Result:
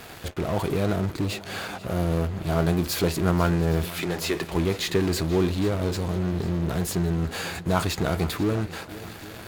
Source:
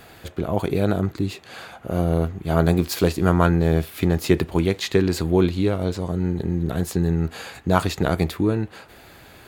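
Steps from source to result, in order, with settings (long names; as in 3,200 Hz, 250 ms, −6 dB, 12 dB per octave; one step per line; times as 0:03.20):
0:03.86–0:04.52: meter weighting curve A
in parallel at −11 dB: fuzz pedal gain 40 dB, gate −46 dBFS
on the sum: feedback echo with a long and a short gap by turns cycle 813 ms, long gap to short 1.5 to 1, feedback 41%, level −17 dB
level −7 dB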